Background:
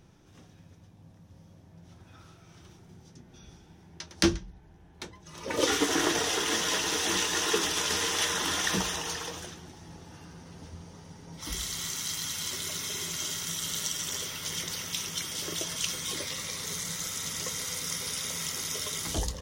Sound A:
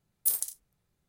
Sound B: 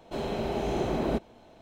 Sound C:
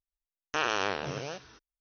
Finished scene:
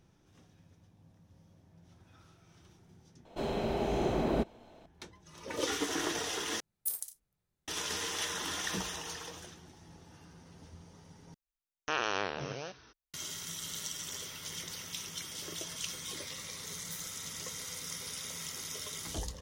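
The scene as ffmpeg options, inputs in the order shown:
ffmpeg -i bed.wav -i cue0.wav -i cue1.wav -i cue2.wav -filter_complex "[1:a]asplit=2[link_01][link_02];[0:a]volume=-7.5dB[link_03];[link_02]flanger=delay=22.5:depth=5:speed=1.9[link_04];[link_03]asplit=4[link_05][link_06][link_07][link_08];[link_05]atrim=end=3.254[link_09];[2:a]atrim=end=1.61,asetpts=PTS-STARTPTS,volume=-2dB[link_10];[link_06]atrim=start=4.856:end=6.604[link_11];[link_01]atrim=end=1.08,asetpts=PTS-STARTPTS,volume=-8dB[link_12];[link_07]atrim=start=7.676:end=11.344[link_13];[3:a]atrim=end=1.8,asetpts=PTS-STARTPTS,volume=-3.5dB[link_14];[link_08]atrim=start=13.136[link_15];[link_04]atrim=end=1.08,asetpts=PTS-STARTPTS,volume=-17dB,afade=type=in:duration=0.004:curve=hsin,afade=type=out:start_time=1.076:duration=0.004:curve=hsin,adelay=16650[link_16];[link_09][link_10]acrossfade=duration=0.004:curve1=hsin:curve2=hsin[link_17];[link_17][link_11]acrossfade=duration=0.004:curve1=hsin:curve2=hsin[link_18];[link_18][link_12]acrossfade=duration=0.004:curve1=hsin:curve2=hsin[link_19];[link_19][link_13]acrossfade=duration=0.004:curve1=hsin:curve2=hsin[link_20];[link_20][link_14]acrossfade=duration=0.004:curve1=hsin:curve2=hsin[link_21];[link_21][link_15]acrossfade=duration=0.004:curve1=hsin:curve2=hsin[link_22];[link_22][link_16]amix=inputs=2:normalize=0" out.wav

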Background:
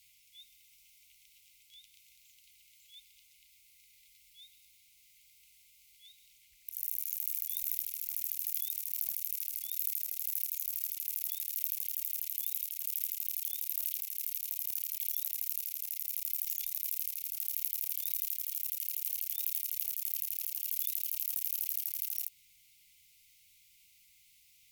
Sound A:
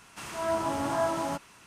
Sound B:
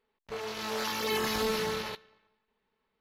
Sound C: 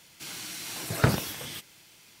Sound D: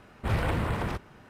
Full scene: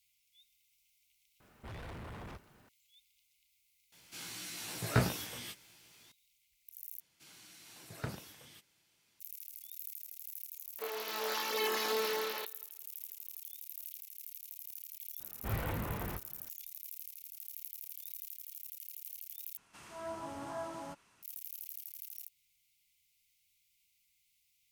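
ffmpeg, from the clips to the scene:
ffmpeg -i bed.wav -i cue0.wav -i cue1.wav -i cue2.wav -i cue3.wav -filter_complex "[4:a]asplit=2[link_01][link_02];[3:a]asplit=2[link_03][link_04];[0:a]volume=-11dB[link_05];[link_01]asoftclip=type=tanh:threshold=-32.5dB[link_06];[link_03]asplit=2[link_07][link_08];[link_08]adelay=17,volume=-2.5dB[link_09];[link_07][link_09]amix=inputs=2:normalize=0[link_10];[2:a]highpass=frequency=300:width=0.5412,highpass=frequency=300:width=1.3066[link_11];[link_02]asplit=2[link_12][link_13];[link_13]adelay=20,volume=-7dB[link_14];[link_12][link_14]amix=inputs=2:normalize=0[link_15];[link_05]asplit=3[link_16][link_17][link_18];[link_16]atrim=end=7.004[link_19];[link_04]atrim=end=2.2,asetpts=PTS-STARTPTS,volume=-18dB[link_20];[link_17]atrim=start=9.196:end=19.574[link_21];[1:a]atrim=end=1.66,asetpts=PTS-STARTPTS,volume=-13.5dB[link_22];[link_18]atrim=start=21.226[link_23];[link_06]atrim=end=1.29,asetpts=PTS-STARTPTS,volume=-11dB,afade=type=in:duration=0.004:curve=hsin,afade=type=out:start_time=1.286:duration=0.004:curve=hsin,adelay=1400[link_24];[link_10]atrim=end=2.2,asetpts=PTS-STARTPTS,volume=-8dB,afade=type=in:duration=0.004:curve=hsin,afade=type=out:start_time=2.196:duration=0.004:curve=hsin,adelay=3920[link_25];[link_11]atrim=end=3,asetpts=PTS-STARTPTS,volume=-3dB,afade=type=in:duration=0.1,afade=type=out:start_time=2.9:duration=0.1,adelay=463050S[link_26];[link_15]atrim=end=1.29,asetpts=PTS-STARTPTS,volume=-10dB,afade=type=in:duration=0.004:curve=hsin,afade=type=out:start_time=1.286:duration=0.004:curve=hsin,adelay=15200[link_27];[link_19][link_20]acrossfade=duration=0.004:curve1=hsin:curve2=hsin[link_28];[link_28][link_21]acrossfade=duration=0.004:curve1=hsin:curve2=hsin[link_29];[link_29][link_22]acrossfade=duration=0.004:curve1=hsin:curve2=hsin[link_30];[link_30][link_23]acrossfade=duration=0.004:curve1=hsin:curve2=hsin[link_31];[link_31][link_24][link_25][link_26][link_27]amix=inputs=5:normalize=0" out.wav

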